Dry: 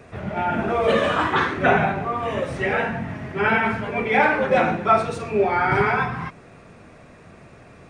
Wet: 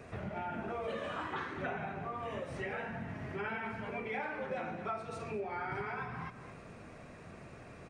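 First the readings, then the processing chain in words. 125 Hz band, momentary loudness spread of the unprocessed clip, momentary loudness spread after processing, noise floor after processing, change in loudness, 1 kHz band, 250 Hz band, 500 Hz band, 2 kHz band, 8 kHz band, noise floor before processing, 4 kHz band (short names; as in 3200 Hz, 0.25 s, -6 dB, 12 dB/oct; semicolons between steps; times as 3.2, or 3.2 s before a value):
-15.5 dB, 8 LU, 13 LU, -52 dBFS, -18.5 dB, -19.0 dB, -17.0 dB, -18.5 dB, -19.0 dB, n/a, -47 dBFS, -19.0 dB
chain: notch 3500 Hz, Q 26; echo 0.222 s -17.5 dB; compressor 4:1, threshold -34 dBFS, peak gain reduction 18.5 dB; gain -5 dB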